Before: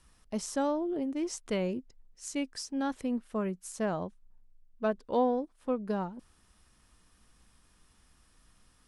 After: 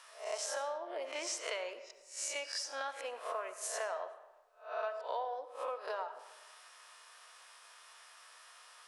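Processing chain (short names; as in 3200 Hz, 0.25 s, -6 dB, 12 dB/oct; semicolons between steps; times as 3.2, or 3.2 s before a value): spectral swells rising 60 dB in 0.37 s; inverse Chebyshev high-pass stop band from 240 Hz, stop band 50 dB; high shelf 7800 Hz -10.5 dB; notch 800 Hz, Q 12; compressor 6:1, threshold -49 dBFS, peak gain reduction 19 dB; digital reverb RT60 1.1 s, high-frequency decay 0.65×, pre-delay 30 ms, DRR 10 dB; gain +12 dB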